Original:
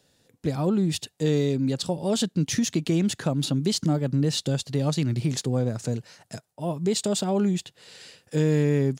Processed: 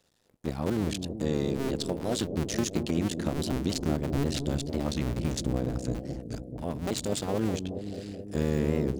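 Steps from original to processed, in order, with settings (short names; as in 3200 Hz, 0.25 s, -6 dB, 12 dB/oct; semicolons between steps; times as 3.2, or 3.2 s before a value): cycle switcher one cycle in 2, muted; analogue delay 0.214 s, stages 1024, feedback 78%, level -8 dB; record warp 45 rpm, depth 160 cents; gain -3 dB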